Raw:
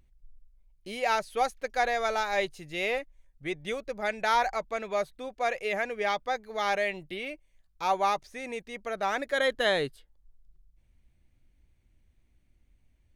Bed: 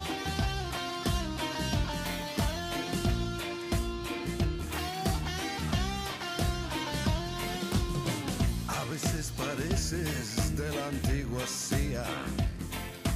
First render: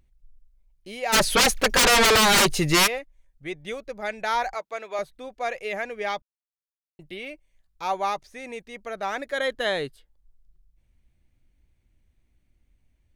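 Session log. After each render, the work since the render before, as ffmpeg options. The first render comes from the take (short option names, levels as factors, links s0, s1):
-filter_complex "[0:a]asplit=3[s0][s1][s2];[s0]afade=t=out:st=1.12:d=0.02[s3];[s1]aeval=exprs='0.2*sin(PI/2*8.91*val(0)/0.2)':c=same,afade=t=in:st=1.12:d=0.02,afade=t=out:st=2.86:d=0.02[s4];[s2]afade=t=in:st=2.86:d=0.02[s5];[s3][s4][s5]amix=inputs=3:normalize=0,asettb=1/sr,asplit=3[s6][s7][s8];[s6]atrim=end=4.544[s9];[s7]atrim=start=4.54:end=4.99,asetpts=PTS-STARTPTS,afade=t=in:d=0.004:c=qsin,afade=t=out:st=0.446:d=0.004:c=qsin,highpass=390[s10];[s8]atrim=start=4.986[s11];[s9][s10]acrossfade=d=0.004:c1=hsin:c2=qsin[s12];[s12][s11]acrossfade=d=0.004:c1=qsin:c2=hsin,asplit=3[s13][s14][s15];[s13]atrim=end=6.22,asetpts=PTS-STARTPTS,afade=t=out:st=6.216:d=0.004:c=hsin[s16];[s14]atrim=start=6.22:end=6.99,asetpts=PTS-STARTPTS,volume=0[s17];[s15]atrim=start=6.99,asetpts=PTS-STARTPTS,afade=t=in:d=0.004:c=hsin[s18];[s16][s17][s18]concat=n=3:v=0:a=1"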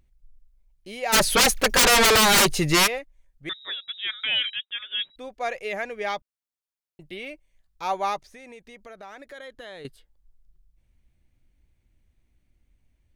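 -filter_complex "[0:a]asettb=1/sr,asplit=3[s0][s1][s2];[s0]atrim=end=1.114[s3];[s1]atrim=start=1.11:end=2.5,asetpts=PTS-STARTPTS,afade=t=in:d=0.004:c=qsin,afade=t=out:st=1.386:d=0.004:c=qsin,highshelf=f=10000:g=6[s4];[s2]atrim=start=2.496[s5];[s3][s4]acrossfade=d=0.004:c1=hsin:c2=qsin[s6];[s6][s5]acrossfade=d=0.004:c1=qsin:c2=hsin,asettb=1/sr,asplit=3[s7][s8][s9];[s7]atrim=end=3.494[s10];[s8]atrim=start=3.49:end=5.16,asetpts=PTS-STARTPTS,afade=t=in:d=0.004:c=qsin,afade=t=out:st=1.666:d=0.004:c=qsin,lowpass=f=3300:t=q:w=0.5098,lowpass=f=3300:t=q:w=0.6013,lowpass=f=3300:t=q:w=0.9,lowpass=f=3300:t=q:w=2.563,afreqshift=-3900[s11];[s9]atrim=start=5.156[s12];[s10][s11]acrossfade=d=0.004:c1=hsin:c2=qsin[s13];[s13][s12]acrossfade=d=0.004:c1=qsin:c2=hsin,asettb=1/sr,asplit=3[s14][s15][s16];[s14]atrim=end=8.274[s17];[s15]atrim=start=8.27:end=9.85,asetpts=PTS-STARTPTS,afade=t=in:d=0.004:c=qsin,afade=t=out:st=1.576:d=0.004:c=qsin,acompressor=threshold=0.00708:ratio=3:attack=3.2:release=140:knee=1:detection=peak[s18];[s16]atrim=start=9.846[s19];[s17][s18]acrossfade=d=0.004:c1=hsin:c2=qsin[s20];[s20][s19]acrossfade=d=0.004:c1=qsin:c2=hsin"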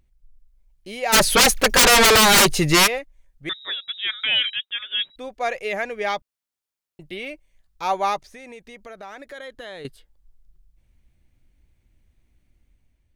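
-af "dynaudnorm=f=150:g=7:m=1.58"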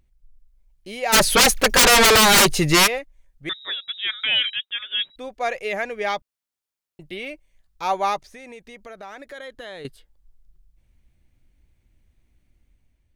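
-af anull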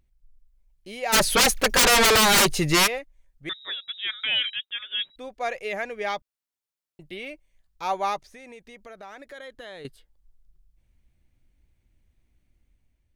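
-af "volume=0.631"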